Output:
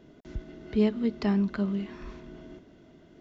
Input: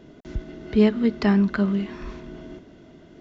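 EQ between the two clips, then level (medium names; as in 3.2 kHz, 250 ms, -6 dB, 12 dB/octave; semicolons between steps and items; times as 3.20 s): dynamic bell 1.6 kHz, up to -5 dB, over -41 dBFS, Q 1.6; -6.5 dB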